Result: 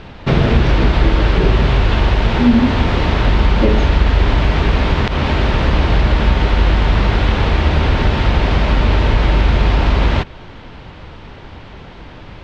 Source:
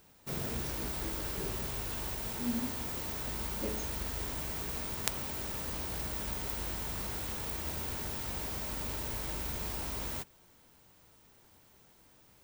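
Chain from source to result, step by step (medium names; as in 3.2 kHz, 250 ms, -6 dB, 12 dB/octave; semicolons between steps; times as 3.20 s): bass shelf 84 Hz +10 dB; compression 2:1, threshold -39 dBFS, peak gain reduction 8 dB; low-pass 3.6 kHz 24 dB/octave; loudness maximiser +28 dB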